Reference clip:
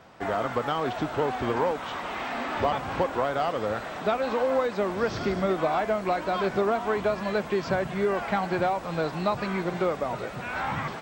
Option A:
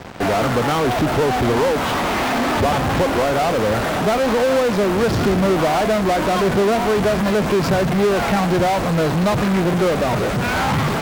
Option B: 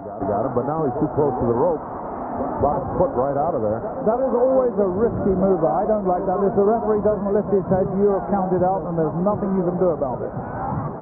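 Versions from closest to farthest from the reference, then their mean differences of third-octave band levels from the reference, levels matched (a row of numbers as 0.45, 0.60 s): A, B; 6.0, 11.5 dB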